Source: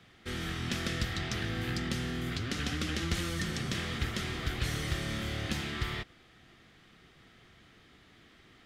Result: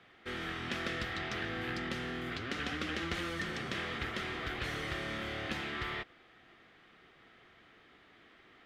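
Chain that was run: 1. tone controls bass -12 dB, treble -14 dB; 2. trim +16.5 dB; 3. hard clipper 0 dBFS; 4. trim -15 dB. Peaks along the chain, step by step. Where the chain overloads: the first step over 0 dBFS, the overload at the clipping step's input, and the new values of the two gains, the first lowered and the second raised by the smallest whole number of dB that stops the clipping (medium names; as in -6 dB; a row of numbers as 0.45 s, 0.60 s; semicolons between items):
-22.5 dBFS, -6.0 dBFS, -6.0 dBFS, -21.0 dBFS; nothing clips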